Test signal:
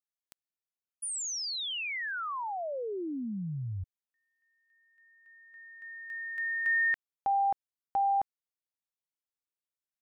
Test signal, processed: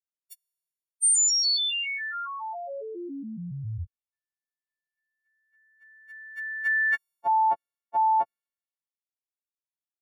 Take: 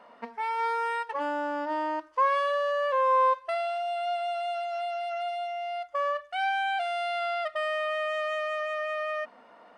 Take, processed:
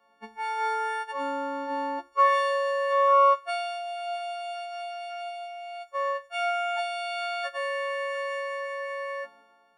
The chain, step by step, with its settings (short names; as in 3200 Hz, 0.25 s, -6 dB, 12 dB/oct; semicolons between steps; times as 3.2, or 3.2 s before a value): frequency quantiser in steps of 4 st; three-band expander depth 70%